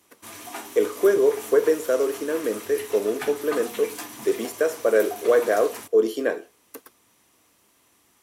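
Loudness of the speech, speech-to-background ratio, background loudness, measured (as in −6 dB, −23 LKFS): −23.0 LKFS, 14.0 dB, −37.0 LKFS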